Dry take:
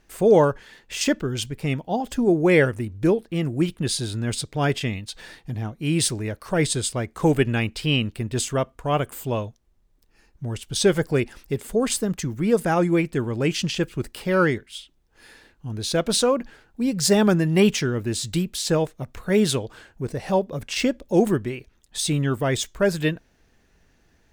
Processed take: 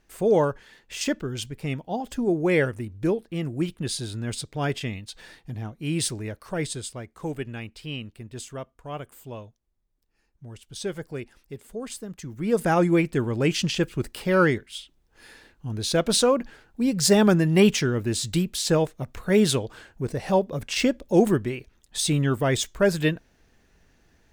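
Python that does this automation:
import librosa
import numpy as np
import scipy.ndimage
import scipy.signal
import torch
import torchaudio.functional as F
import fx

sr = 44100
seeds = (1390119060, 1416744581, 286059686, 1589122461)

y = fx.gain(x, sr, db=fx.line((6.28, -4.5), (7.24, -12.5), (12.14, -12.5), (12.66, 0.0)))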